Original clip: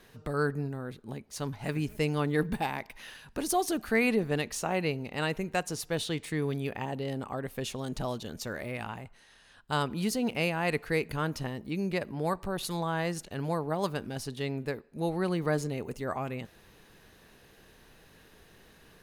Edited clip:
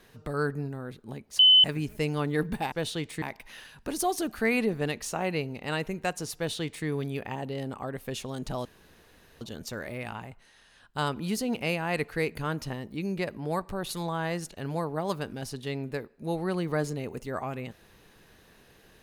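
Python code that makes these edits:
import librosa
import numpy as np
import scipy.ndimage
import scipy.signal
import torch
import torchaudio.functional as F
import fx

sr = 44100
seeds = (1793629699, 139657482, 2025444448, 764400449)

y = fx.edit(x, sr, fx.bleep(start_s=1.39, length_s=0.25, hz=3030.0, db=-13.5),
    fx.duplicate(start_s=5.86, length_s=0.5, to_s=2.72),
    fx.insert_room_tone(at_s=8.15, length_s=0.76), tone=tone)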